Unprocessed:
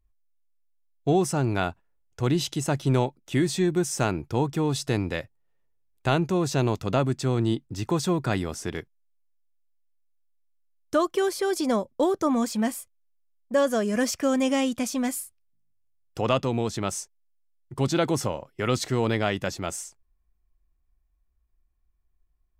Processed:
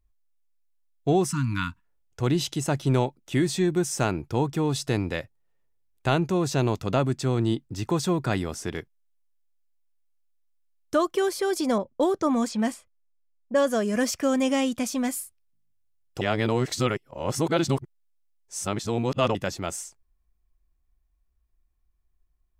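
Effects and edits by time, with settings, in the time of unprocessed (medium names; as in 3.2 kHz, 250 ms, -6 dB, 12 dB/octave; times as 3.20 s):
1.26–1.85 s: spectral selection erased 310–910 Hz
11.78–13.73 s: level-controlled noise filter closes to 650 Hz, open at -20.5 dBFS
16.21–19.35 s: reverse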